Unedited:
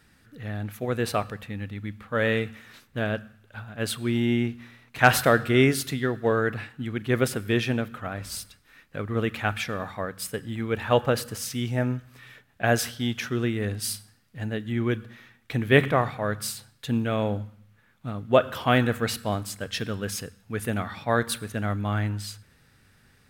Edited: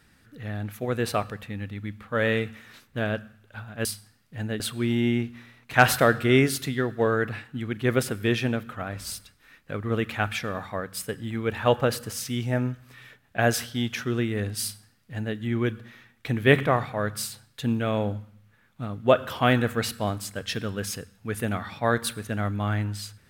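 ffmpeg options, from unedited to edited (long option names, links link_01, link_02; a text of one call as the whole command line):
ffmpeg -i in.wav -filter_complex "[0:a]asplit=3[link_01][link_02][link_03];[link_01]atrim=end=3.852[link_04];[link_02]atrim=start=13.868:end=14.622[link_05];[link_03]atrim=start=3.848[link_06];[link_04][link_05]acrossfade=duration=0.004:curve1=hsin:curve2=hsin[link_07];[link_07][link_06]acrossfade=duration=0.004:curve1=hsin:curve2=hsin" out.wav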